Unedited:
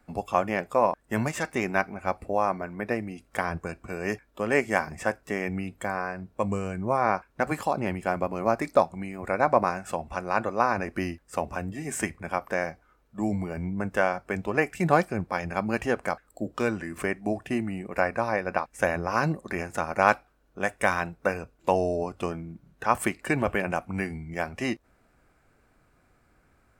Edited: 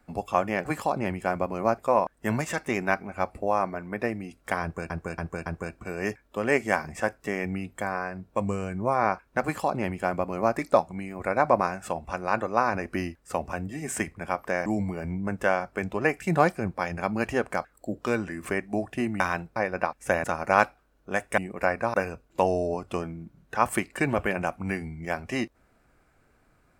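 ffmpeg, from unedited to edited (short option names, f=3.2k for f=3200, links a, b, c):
-filter_complex "[0:a]asplit=12[a][b][c][d][e][f][g][h][i][j][k][l];[a]atrim=end=0.652[m];[b]atrim=start=7.458:end=8.592[n];[c]atrim=start=0.648:end=3.772[o];[d]atrim=start=3.488:end=3.772[p];[e]atrim=start=3.488:end=3.772[q];[f]atrim=start=3.488:end=12.692[r];[g]atrim=start=13.188:end=17.732[s];[h]atrim=start=20.868:end=21.232[t];[i]atrim=start=18.288:end=18.972[u];[j]atrim=start=19.728:end=20.872[v];[k]atrim=start=17.728:end=18.292[w];[l]atrim=start=21.228[x];[m][n]acrossfade=d=0.004:c1=hsin:c2=hsin[y];[y][o]acrossfade=d=0.004:c1=hsin:c2=hsin[z];[z][p]acrossfade=d=0.004:c1=hsin:c2=hsin[aa];[aa][q]acrossfade=d=0.004:c1=hsin:c2=hsin[ab];[ab][r]acrossfade=d=0.004:c1=hsin:c2=hsin[ac];[ac][s]acrossfade=d=0.004:c1=hsin:c2=hsin[ad];[ad][t]acrossfade=d=0.004:c1=hsin:c2=hsin[ae];[ae][u]acrossfade=d=0.004:c1=hsin:c2=hsin[af];[af][v]acrossfade=d=0.004:c1=hsin:c2=hsin[ag];[ag][w]acrossfade=d=0.004:c1=hsin:c2=hsin[ah];[ah][x]acrossfade=d=0.004:c1=hsin:c2=hsin"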